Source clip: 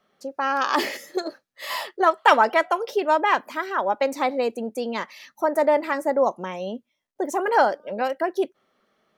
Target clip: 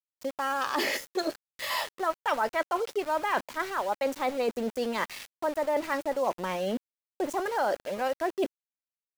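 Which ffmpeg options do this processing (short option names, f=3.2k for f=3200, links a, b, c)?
-af "lowshelf=f=79:g=-11.5,areverse,acompressor=threshold=-33dB:ratio=5,areverse,aeval=exprs='val(0)*gte(abs(val(0)),0.00668)':c=same,volume=6dB"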